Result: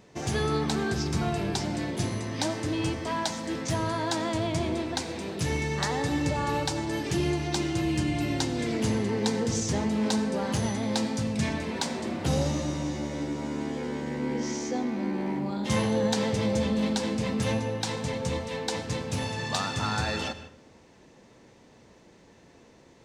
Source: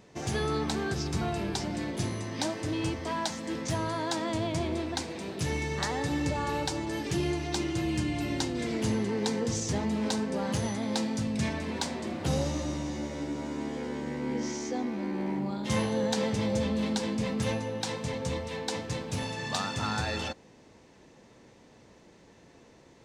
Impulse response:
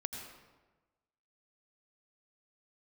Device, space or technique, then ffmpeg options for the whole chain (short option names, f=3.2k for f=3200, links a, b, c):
keyed gated reverb: -filter_complex "[0:a]asplit=3[a][b][c];[1:a]atrim=start_sample=2205[d];[b][d]afir=irnorm=-1:irlink=0[e];[c]apad=whole_len=1016386[f];[e][f]sidechaingate=range=-6dB:threshold=-52dB:ratio=16:detection=peak,volume=-5dB[g];[a][g]amix=inputs=2:normalize=0,volume=-1dB"